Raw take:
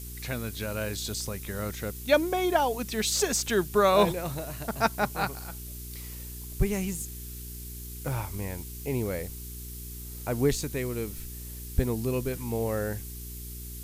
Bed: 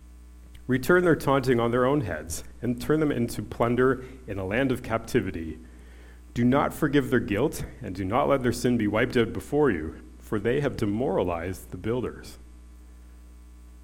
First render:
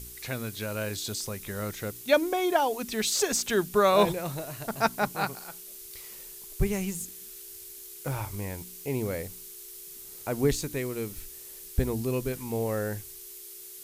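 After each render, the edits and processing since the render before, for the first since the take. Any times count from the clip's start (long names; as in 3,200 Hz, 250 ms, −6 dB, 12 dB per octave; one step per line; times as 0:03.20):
hum removal 60 Hz, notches 5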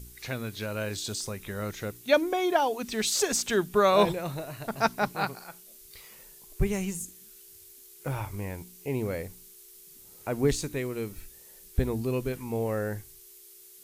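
noise reduction from a noise print 7 dB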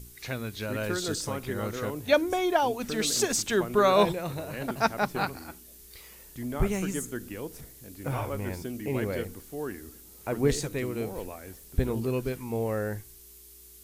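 mix in bed −13 dB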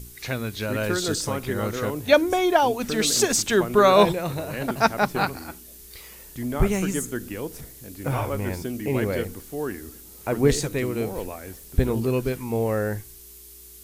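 level +5.5 dB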